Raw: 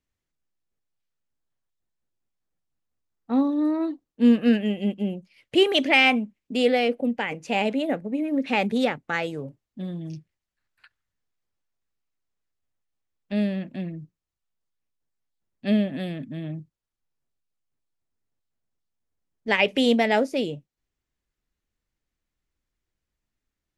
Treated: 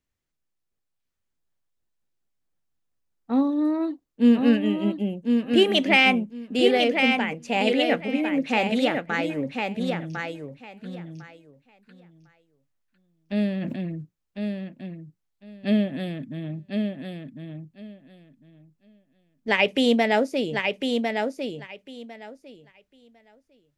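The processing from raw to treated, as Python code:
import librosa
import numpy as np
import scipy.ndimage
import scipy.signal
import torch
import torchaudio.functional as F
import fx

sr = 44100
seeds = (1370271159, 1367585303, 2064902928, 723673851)

y = fx.peak_eq(x, sr, hz=2700.0, db=11.0, octaves=2.4, at=(7.67, 8.29))
y = fx.echo_feedback(y, sr, ms=1052, feedback_pct=17, wet_db=-5)
y = fx.sustainer(y, sr, db_per_s=33.0, at=(13.6, 14.01), fade=0.02)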